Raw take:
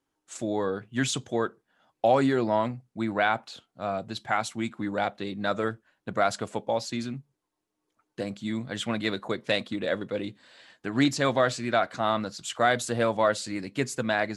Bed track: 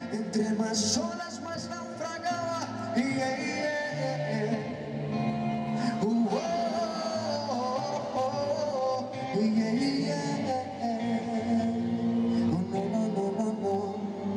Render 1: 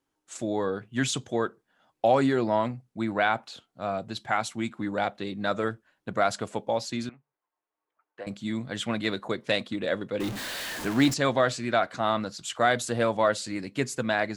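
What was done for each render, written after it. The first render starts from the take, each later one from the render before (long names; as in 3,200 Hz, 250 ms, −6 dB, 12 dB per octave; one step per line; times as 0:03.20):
0:07.09–0:08.27: three-way crossover with the lows and the highs turned down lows −21 dB, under 540 Hz, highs −22 dB, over 2,400 Hz
0:10.20–0:11.14: converter with a step at zero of −29.5 dBFS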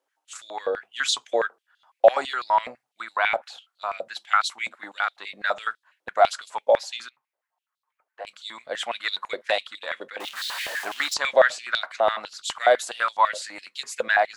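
high-pass on a step sequencer 12 Hz 570–3,900 Hz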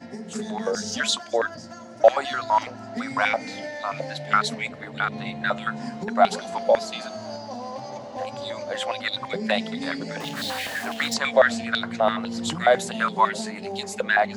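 mix in bed track −4 dB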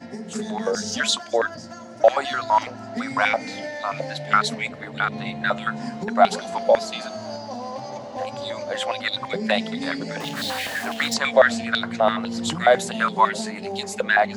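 level +2 dB
brickwall limiter −3 dBFS, peak gain reduction 3 dB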